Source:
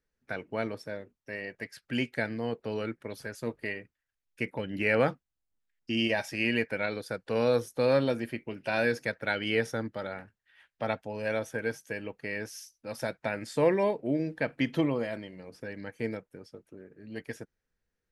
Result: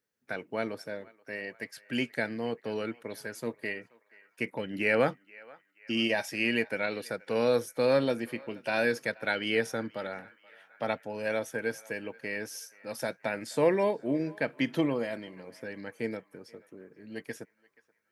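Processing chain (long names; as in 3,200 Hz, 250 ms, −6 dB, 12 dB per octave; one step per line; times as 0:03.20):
high-pass filter 150 Hz 12 dB per octave
high-shelf EQ 8,400 Hz +6.5 dB
feedback echo with a band-pass in the loop 479 ms, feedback 63%, band-pass 1,400 Hz, level −21 dB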